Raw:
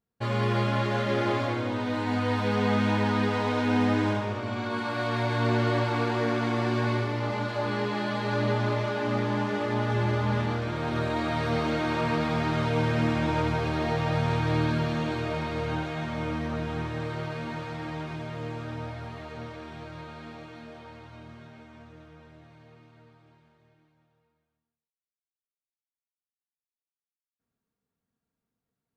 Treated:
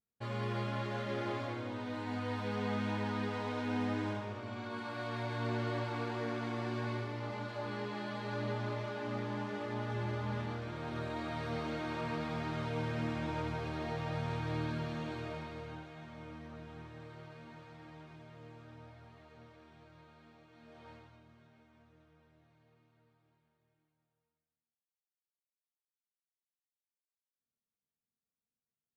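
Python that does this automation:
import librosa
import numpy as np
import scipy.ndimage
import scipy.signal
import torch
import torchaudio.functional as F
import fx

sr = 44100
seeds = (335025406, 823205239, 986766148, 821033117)

y = fx.gain(x, sr, db=fx.line((15.27, -11.0), (15.86, -17.5), (20.48, -17.5), (20.91, -7.0), (21.22, -15.5)))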